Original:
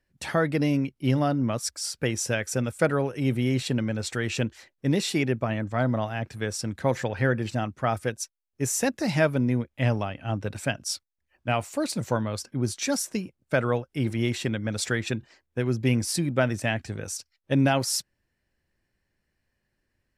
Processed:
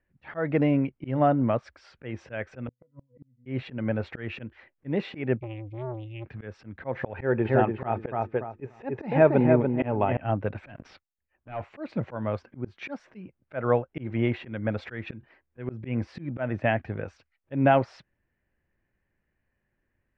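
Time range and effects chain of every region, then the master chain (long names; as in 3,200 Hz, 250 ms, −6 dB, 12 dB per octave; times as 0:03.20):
0:02.67–0:03.46: tilt shelving filter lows +7 dB, about 640 Hz + resonances in every octave B, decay 0.15 s + gate with flip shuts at −25 dBFS, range −38 dB
0:05.37–0:06.25: linear-phase brick-wall band-stop 150–2,100 Hz + saturating transformer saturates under 600 Hz
0:07.16–0:10.17: de-essing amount 100% + hollow resonant body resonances 390/870/2,500/3,600 Hz, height 9 dB, ringing for 35 ms + feedback echo with a low-pass in the loop 289 ms, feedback 25%, low-pass 2,400 Hz, level −5 dB
0:10.67–0:11.61: leveller curve on the samples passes 3 + high-frequency loss of the air 64 metres + downward compressor 16 to 1, threshold −28 dBFS
whole clip: low-pass filter 2,500 Hz 24 dB per octave; volume swells 182 ms; dynamic equaliser 670 Hz, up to +6 dB, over −42 dBFS, Q 1.1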